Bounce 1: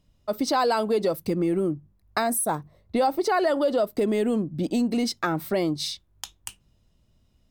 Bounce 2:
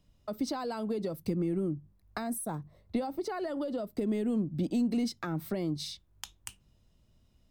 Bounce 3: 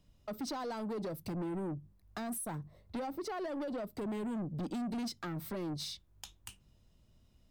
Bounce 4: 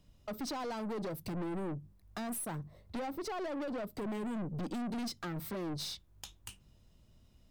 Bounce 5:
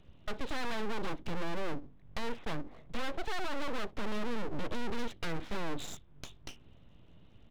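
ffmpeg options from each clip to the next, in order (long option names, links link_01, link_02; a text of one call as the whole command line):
ffmpeg -i in.wav -filter_complex "[0:a]acrossover=split=260[link_01][link_02];[link_02]acompressor=threshold=-36dB:ratio=4[link_03];[link_01][link_03]amix=inputs=2:normalize=0,volume=-2dB" out.wav
ffmpeg -i in.wav -af "asoftclip=type=tanh:threshold=-34.5dB" out.wav
ffmpeg -i in.wav -af "aeval=exprs='(tanh(79.4*val(0)+0.3)-tanh(0.3))/79.4':channel_layout=same,volume=3.5dB" out.wav
ffmpeg -i in.wav -af "aresample=8000,aresample=44100,aeval=exprs='abs(val(0))':channel_layout=same,volume=7.5dB" out.wav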